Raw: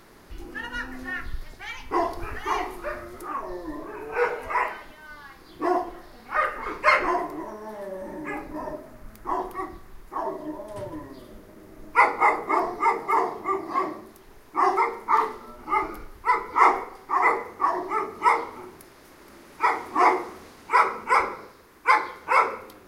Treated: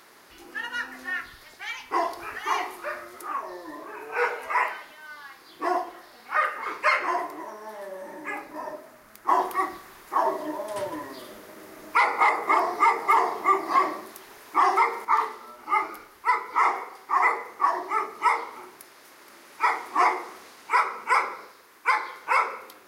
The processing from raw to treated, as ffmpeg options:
-filter_complex "[0:a]asettb=1/sr,asplit=3[s0][s1][s2];[s0]atrim=end=9.284[s3];[s1]atrim=start=9.28:end=15.05,asetpts=PTS-STARTPTS,afade=t=in:d=0.004:c=qsin,afade=t=out:st=5.766:d=0.004:c=qsin,acontrast=78[s4];[s2]atrim=start=15.046[s5];[s3][s4]acrossfade=d=0.004:c1=hsin:c2=qsin[s6];[s6][s5]acrossfade=d=0.004:c1=qsin:c2=hsin,highpass=f=920:p=1,alimiter=limit=0.211:level=0:latency=1:release=259,volume=1.41"

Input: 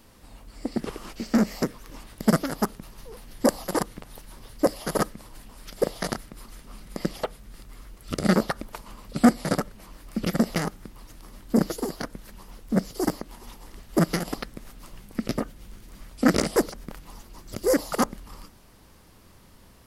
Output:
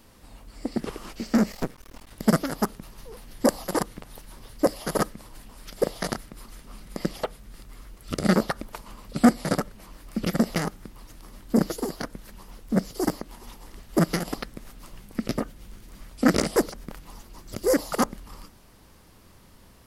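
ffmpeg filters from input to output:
-filter_complex "[0:a]asettb=1/sr,asplit=3[s0][s1][s2];[s0]atrim=end=1.524[s3];[s1]atrim=start=1.52:end=2.11,asetpts=PTS-STARTPTS,afade=t=in:d=0.004:c=qsin,afade=t=out:st=0.586:d=0.004:c=qsin,aeval=exprs='max(val(0),0)':c=same[s4];[s2]atrim=start=2.106[s5];[s3][s4]acrossfade=d=0.004:c1=hsin:c2=qsin[s6];[s6][s5]acrossfade=d=0.004:c1=qsin:c2=hsin"

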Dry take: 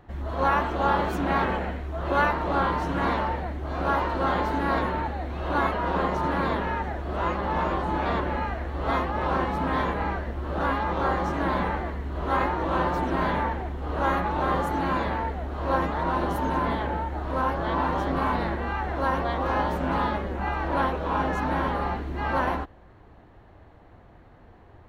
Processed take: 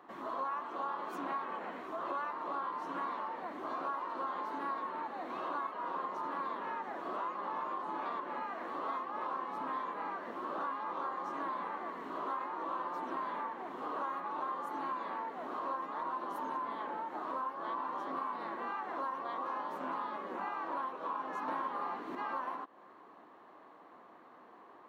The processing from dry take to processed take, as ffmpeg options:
-filter_complex "[0:a]asplit=3[s0][s1][s2];[s0]atrim=end=21.482[s3];[s1]atrim=start=21.478:end=22.152,asetpts=PTS-STARTPTS,volume=2.51[s4];[s2]atrim=start=22.148[s5];[s3][s4]acrossfade=d=0.004:c1=hsin:c2=hsin[s6];[s6][s5]acrossfade=d=0.004:c1=hsin:c2=hsin,highpass=f=240:w=0.5412,highpass=f=240:w=1.3066,equalizer=f=1100:t=o:w=0.4:g=12.5,acompressor=threshold=0.0251:ratio=6,volume=0.596"

